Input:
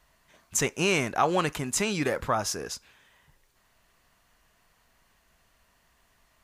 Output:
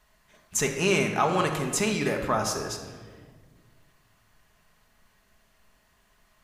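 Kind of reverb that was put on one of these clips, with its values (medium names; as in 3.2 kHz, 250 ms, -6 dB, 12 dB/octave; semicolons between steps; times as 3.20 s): simulated room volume 1900 m³, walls mixed, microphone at 1.4 m; trim -1 dB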